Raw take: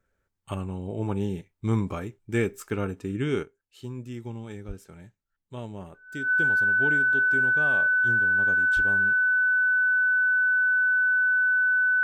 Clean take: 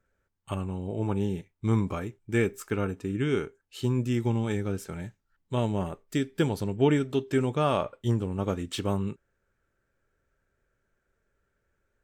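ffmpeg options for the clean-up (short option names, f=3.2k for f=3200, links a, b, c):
-filter_complex "[0:a]bandreject=f=1.5k:w=30,asplit=3[a][b][c];[a]afade=t=out:st=4.67:d=0.02[d];[b]highpass=f=140:w=0.5412,highpass=f=140:w=1.3066,afade=t=in:st=4.67:d=0.02,afade=t=out:st=4.79:d=0.02[e];[c]afade=t=in:st=4.79:d=0.02[f];[d][e][f]amix=inputs=3:normalize=0,asplit=3[g][h][i];[g]afade=t=out:st=8.75:d=0.02[j];[h]highpass=f=140:w=0.5412,highpass=f=140:w=1.3066,afade=t=in:st=8.75:d=0.02,afade=t=out:st=8.87:d=0.02[k];[i]afade=t=in:st=8.87:d=0.02[l];[j][k][l]amix=inputs=3:normalize=0,asetnsamples=n=441:p=0,asendcmd='3.43 volume volume 10dB',volume=0dB"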